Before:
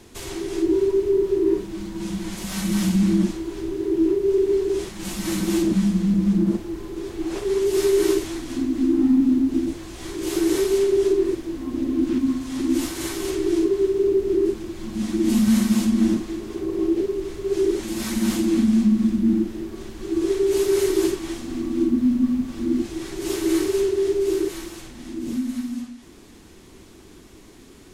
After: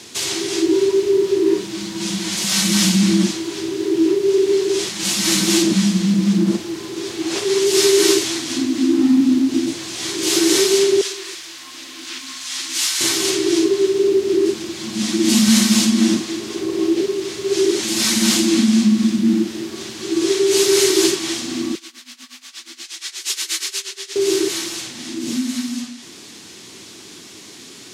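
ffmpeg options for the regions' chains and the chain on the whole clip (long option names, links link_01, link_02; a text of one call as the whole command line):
ffmpeg -i in.wav -filter_complex "[0:a]asettb=1/sr,asplit=3[link_01][link_02][link_03];[link_01]atrim=end=11.014[link_04];[link_02]atrim=start=11.01:end=13.01,asetpts=PTS-STARTPTS,afade=type=in:duration=0.004:curve=qsin,afade=type=out:start_time=1.996:duration=0.004:curve=qsin,highpass=1200,aeval=exprs='val(0)+0.001*(sin(2*PI*50*n/s)+sin(2*PI*2*50*n/s)/2+sin(2*PI*3*50*n/s)/3+sin(2*PI*4*50*n/s)/4+sin(2*PI*5*50*n/s)/5)':channel_layout=same[link_05];[link_03]atrim=start=13.006[link_06];[link_04][link_05]acrossfade=duration=0.004:curve1=hsin:curve2=qsin[link_07];[link_07][link_06]acrossfade=duration=0.004:curve1=qsin:curve2=hsin,asettb=1/sr,asplit=3[link_08][link_09][link_10];[link_08]atrim=end=21.754[link_11];[link_09]atrim=start=21.75:end=24.16,asetpts=PTS-STARTPTS,afade=type=in:duration=0.004:curve=qsin,afade=type=out:start_time=2.406:duration=0.004:curve=qsin,highpass=1500,tremolo=f=8.4:d=0.88[link_12];[link_10]atrim=start=24.156[link_13];[link_11][link_12]acrossfade=duration=0.004:curve1=hsin:curve2=qsin[link_14];[link_14][link_13]acrossfade=duration=0.004:curve1=qsin:curve2=hsin,highpass=frequency=110:width=0.5412,highpass=frequency=110:width=1.3066,equalizer=frequency=4900:width_type=o:width=2.7:gain=14.5,volume=3dB" out.wav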